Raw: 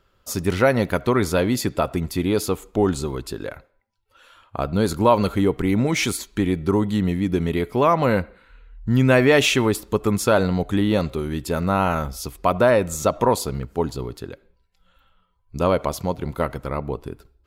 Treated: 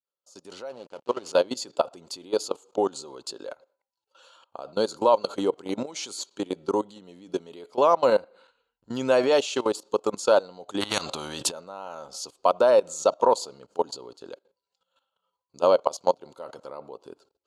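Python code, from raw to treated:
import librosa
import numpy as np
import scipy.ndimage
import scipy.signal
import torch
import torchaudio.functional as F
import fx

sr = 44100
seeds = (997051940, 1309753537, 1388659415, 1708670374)

y = fx.fade_in_head(x, sr, length_s=1.44)
y = fx.peak_eq(y, sr, hz=2500.0, db=-9.0, octaves=0.95)
y = fx.transient(y, sr, attack_db=5, sustain_db=-5, at=(15.83, 16.25))
y = fx.level_steps(y, sr, step_db=19)
y = fx.backlash(y, sr, play_db=-39.0, at=(0.69, 1.33))
y = fx.cabinet(y, sr, low_hz=400.0, low_slope=12, high_hz=9200.0, hz=(540.0, 880.0, 1900.0, 2900.0, 4400.0, 6800.0), db=(6, 4, -9, 9, 9, 7))
y = fx.spectral_comp(y, sr, ratio=4.0, at=(10.8, 11.5), fade=0.02)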